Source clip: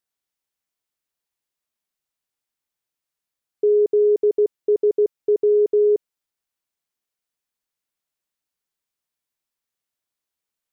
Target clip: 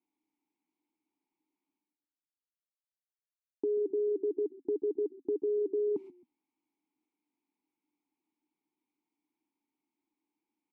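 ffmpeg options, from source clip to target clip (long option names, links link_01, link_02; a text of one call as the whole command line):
ffmpeg -i in.wav -filter_complex "[0:a]highpass=230,agate=range=-54dB:threshold=-32dB:ratio=16:detection=peak,tiltshelf=frequency=640:gain=9.5,areverse,acompressor=mode=upward:threshold=-23dB:ratio=2.5,areverse,asplit=3[link_01][link_02][link_03];[link_01]bandpass=frequency=300:width_type=q:width=8,volume=0dB[link_04];[link_02]bandpass=frequency=870:width_type=q:width=8,volume=-6dB[link_05];[link_03]bandpass=frequency=2240:width_type=q:width=8,volume=-9dB[link_06];[link_04][link_05][link_06]amix=inputs=3:normalize=0,asplit=2[link_07][link_08];[link_08]asplit=2[link_09][link_10];[link_09]adelay=133,afreqshift=-30,volume=-20.5dB[link_11];[link_10]adelay=266,afreqshift=-60,volume=-30.7dB[link_12];[link_11][link_12]amix=inputs=2:normalize=0[link_13];[link_07][link_13]amix=inputs=2:normalize=0" out.wav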